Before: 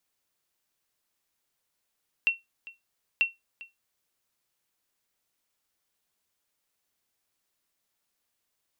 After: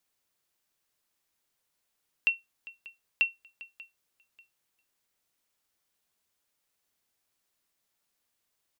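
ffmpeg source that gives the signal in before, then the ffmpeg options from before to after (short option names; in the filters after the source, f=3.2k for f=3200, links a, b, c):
-f lavfi -i "aevalsrc='0.178*(sin(2*PI*2720*mod(t,0.94))*exp(-6.91*mod(t,0.94)/0.18)+0.0944*sin(2*PI*2720*max(mod(t,0.94)-0.4,0))*exp(-6.91*max(mod(t,0.94)-0.4,0)/0.18))':d=1.88:s=44100"
-af "aecho=1:1:589|1178:0.0794|0.0254"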